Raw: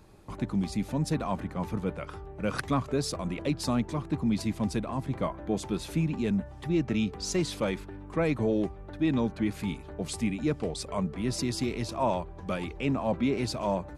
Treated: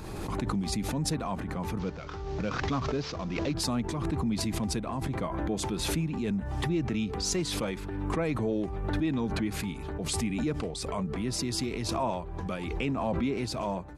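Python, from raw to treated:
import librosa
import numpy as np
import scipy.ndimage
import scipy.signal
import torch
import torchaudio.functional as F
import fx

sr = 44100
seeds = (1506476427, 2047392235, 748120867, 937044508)

y = fx.cvsd(x, sr, bps=32000, at=(1.79, 3.54))
y = fx.notch(y, sr, hz=580.0, q=15.0)
y = fx.pre_swell(y, sr, db_per_s=28.0)
y = F.gain(torch.from_numpy(y), -3.0).numpy()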